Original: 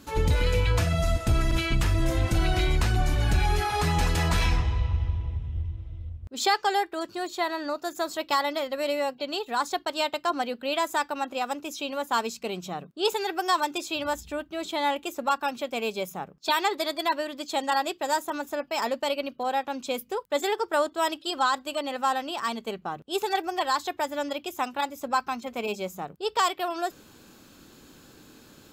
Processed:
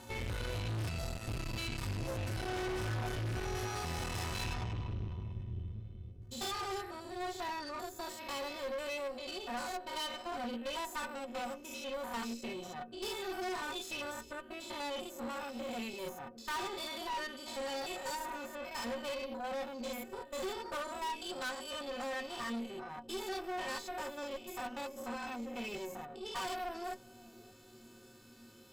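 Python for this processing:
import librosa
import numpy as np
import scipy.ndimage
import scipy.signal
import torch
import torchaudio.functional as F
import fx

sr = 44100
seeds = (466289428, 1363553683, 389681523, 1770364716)

y = fx.spec_steps(x, sr, hold_ms=100)
y = fx.stiff_resonator(y, sr, f0_hz=110.0, decay_s=0.26, stiffness=0.03)
y = fx.tube_stage(y, sr, drive_db=43.0, bias=0.7)
y = fx.echo_bbd(y, sr, ms=579, stages=2048, feedback_pct=61, wet_db=-15.5)
y = F.gain(torch.from_numpy(y), 8.0).numpy()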